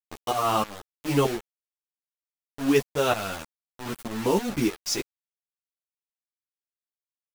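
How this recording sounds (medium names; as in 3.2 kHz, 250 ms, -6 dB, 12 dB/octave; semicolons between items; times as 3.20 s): tremolo saw up 3.2 Hz, depth 80%; a quantiser's noise floor 6-bit, dither none; a shimmering, thickened sound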